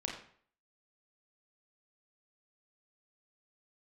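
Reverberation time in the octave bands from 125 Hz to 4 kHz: 0.50 s, 0.50 s, 0.55 s, 0.55 s, 0.50 s, 0.45 s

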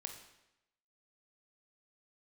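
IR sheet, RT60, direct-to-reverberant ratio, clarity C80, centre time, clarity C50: 0.90 s, 4.0 dB, 9.5 dB, 23 ms, 7.0 dB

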